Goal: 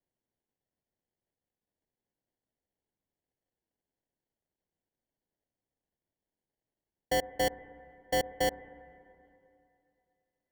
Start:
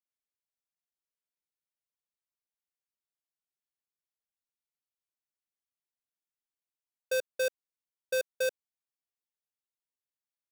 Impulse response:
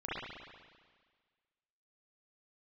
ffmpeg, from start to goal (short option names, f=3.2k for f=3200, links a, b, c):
-filter_complex "[0:a]equalizer=f=2.2k:t=o:w=1.7:g=-5.5,acrusher=samples=35:mix=1:aa=0.000001,asplit=2[a][b];[1:a]atrim=start_sample=2205,asetrate=26019,aresample=44100[c];[b][c]afir=irnorm=-1:irlink=0,volume=-23.5dB[d];[a][d]amix=inputs=2:normalize=0,volume=1.5dB"